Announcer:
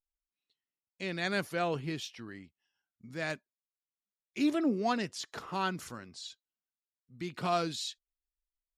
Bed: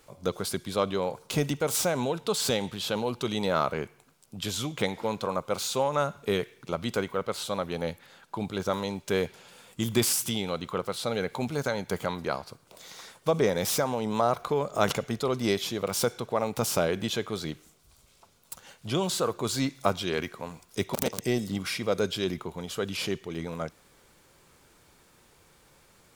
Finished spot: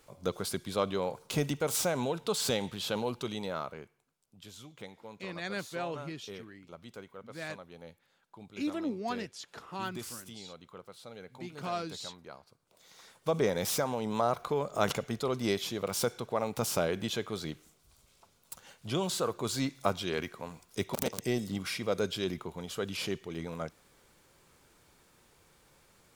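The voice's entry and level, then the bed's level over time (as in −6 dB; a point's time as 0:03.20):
4.20 s, −5.0 dB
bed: 0:03.07 −3.5 dB
0:04.07 −18 dB
0:12.54 −18 dB
0:13.35 −4 dB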